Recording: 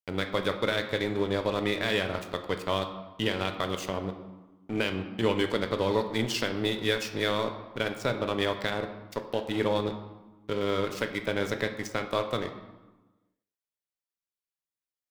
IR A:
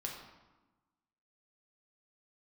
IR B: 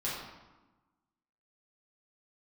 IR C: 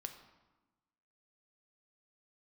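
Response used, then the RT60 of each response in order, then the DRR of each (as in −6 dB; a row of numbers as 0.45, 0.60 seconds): C; 1.1, 1.1, 1.1 seconds; −1.0, −8.5, 6.0 decibels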